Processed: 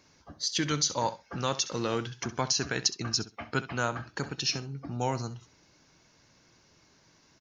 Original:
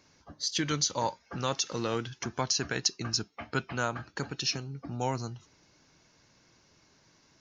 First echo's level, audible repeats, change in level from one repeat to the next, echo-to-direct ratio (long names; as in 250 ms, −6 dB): −15.0 dB, 2, −16.5 dB, −15.0 dB